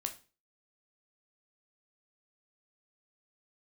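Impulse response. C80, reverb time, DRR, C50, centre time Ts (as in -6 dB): 19.0 dB, 0.35 s, 4.5 dB, 13.0 dB, 9 ms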